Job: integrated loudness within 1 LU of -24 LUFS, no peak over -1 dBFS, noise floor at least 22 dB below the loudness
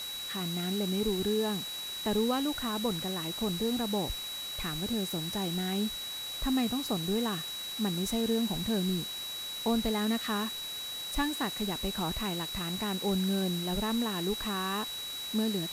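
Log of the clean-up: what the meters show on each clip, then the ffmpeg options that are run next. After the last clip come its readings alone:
steady tone 3900 Hz; tone level -37 dBFS; noise floor -39 dBFS; noise floor target -54 dBFS; loudness -31.5 LUFS; peak -18.0 dBFS; loudness target -24.0 LUFS
-> -af "bandreject=f=3.9k:w=30"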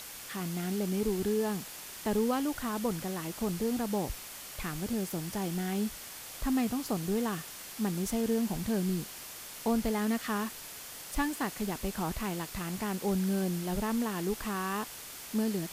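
steady tone none; noise floor -45 dBFS; noise floor target -56 dBFS
-> -af "afftdn=nr=11:nf=-45"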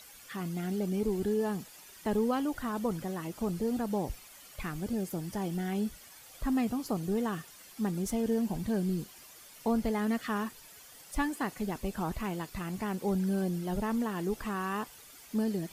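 noise floor -53 dBFS; noise floor target -56 dBFS
-> -af "afftdn=nr=6:nf=-53"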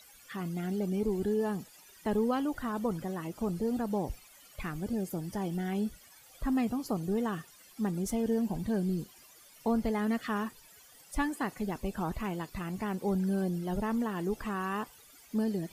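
noise floor -57 dBFS; loudness -33.5 LUFS; peak -18.5 dBFS; loudness target -24.0 LUFS
-> -af "volume=9.5dB"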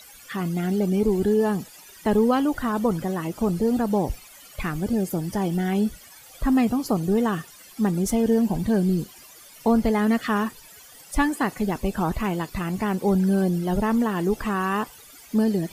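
loudness -24.0 LUFS; peak -9.0 dBFS; noise floor -48 dBFS

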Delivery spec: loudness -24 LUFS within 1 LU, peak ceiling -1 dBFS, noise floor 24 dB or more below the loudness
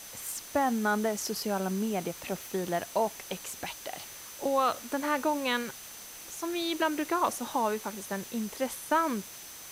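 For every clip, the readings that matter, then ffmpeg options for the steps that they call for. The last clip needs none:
steady tone 6100 Hz; tone level -50 dBFS; noise floor -46 dBFS; noise floor target -56 dBFS; loudness -31.5 LUFS; peak -15.5 dBFS; loudness target -24.0 LUFS
-> -af "bandreject=f=6.1k:w=30"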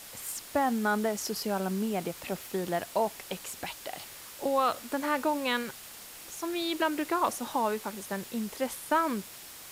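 steady tone none; noise floor -47 dBFS; noise floor target -56 dBFS
-> -af "afftdn=nr=9:nf=-47"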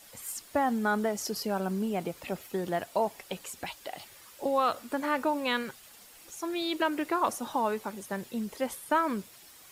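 noise floor -53 dBFS; noise floor target -56 dBFS
-> -af "afftdn=nr=6:nf=-53"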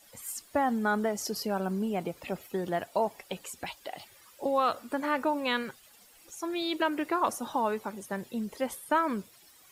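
noise floor -58 dBFS; loudness -31.5 LUFS; peak -15.5 dBFS; loudness target -24.0 LUFS
-> -af "volume=7.5dB"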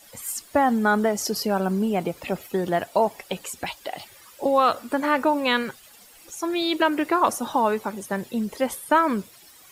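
loudness -24.0 LUFS; peak -8.0 dBFS; noise floor -50 dBFS

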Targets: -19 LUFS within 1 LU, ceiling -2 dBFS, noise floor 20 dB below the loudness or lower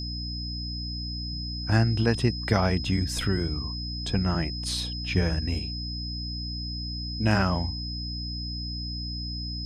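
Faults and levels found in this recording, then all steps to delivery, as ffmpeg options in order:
hum 60 Hz; harmonics up to 300 Hz; hum level -32 dBFS; steady tone 5100 Hz; tone level -35 dBFS; loudness -28.5 LUFS; peak -8.5 dBFS; loudness target -19.0 LUFS
-> -af "bandreject=f=60:t=h:w=6,bandreject=f=120:t=h:w=6,bandreject=f=180:t=h:w=6,bandreject=f=240:t=h:w=6,bandreject=f=300:t=h:w=6"
-af "bandreject=f=5.1k:w=30"
-af "volume=9.5dB,alimiter=limit=-2dB:level=0:latency=1"

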